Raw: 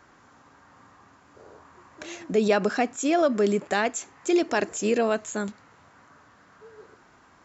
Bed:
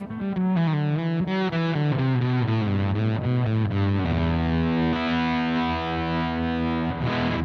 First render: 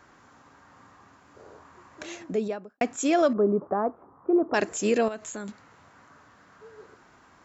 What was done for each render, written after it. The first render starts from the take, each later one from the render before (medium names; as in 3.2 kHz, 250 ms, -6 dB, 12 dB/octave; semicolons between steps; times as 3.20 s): 2.03–2.81 s: studio fade out; 3.33–4.54 s: Chebyshev low-pass 1.2 kHz, order 4; 5.08–5.49 s: compression 3:1, threshold -34 dBFS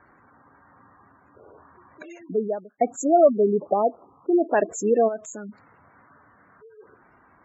spectral gate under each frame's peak -15 dB strong; dynamic bell 620 Hz, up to +8 dB, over -39 dBFS, Q 1.5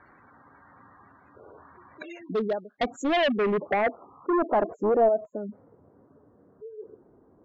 overload inside the chain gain 22 dB; low-pass sweep 3.9 kHz -> 440 Hz, 2.89–5.78 s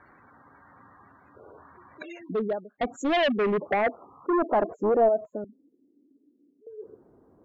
2.31–2.90 s: distance through air 320 m; 5.44–6.67 s: Butterworth band-pass 290 Hz, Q 3.1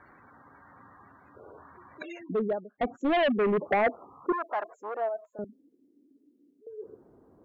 2.23–3.57 s: distance through air 260 m; 4.32–5.39 s: high-pass 1.1 kHz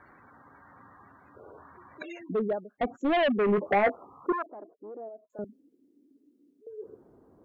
3.47–3.95 s: doubling 15 ms -8 dB; 4.46–5.30 s: resonant low-pass 290 Hz, resonance Q 2.4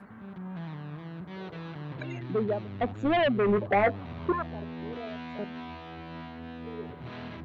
add bed -16.5 dB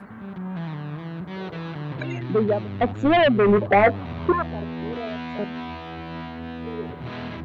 trim +7.5 dB